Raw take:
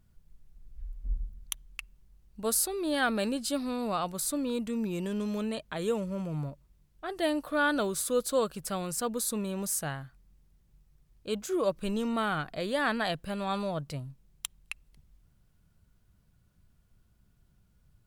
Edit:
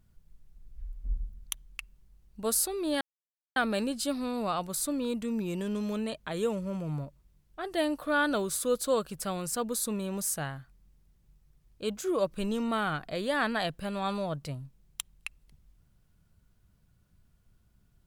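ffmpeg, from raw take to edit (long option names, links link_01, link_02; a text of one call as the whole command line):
ffmpeg -i in.wav -filter_complex "[0:a]asplit=2[link_01][link_02];[link_01]atrim=end=3.01,asetpts=PTS-STARTPTS,afade=type=out:start_time=3.006:duration=0.004:curve=hsin,apad=pad_dur=0.55[link_03];[link_02]atrim=start=3.01,asetpts=PTS-STARTPTS,afade=type=in:duration=0.004:curve=hsin[link_04];[link_03][link_04]concat=n=2:v=0:a=1" out.wav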